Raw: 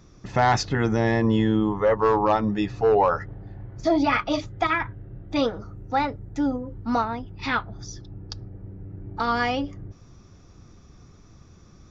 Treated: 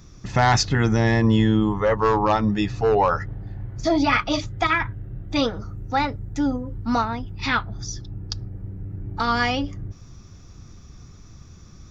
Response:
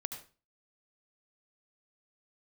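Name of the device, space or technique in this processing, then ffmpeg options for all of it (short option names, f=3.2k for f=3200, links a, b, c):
smiley-face EQ: -af "lowshelf=f=160:g=4,equalizer=f=490:t=o:w=2.1:g=-4.5,highshelf=f=5.1k:g=6.5,volume=3.5dB"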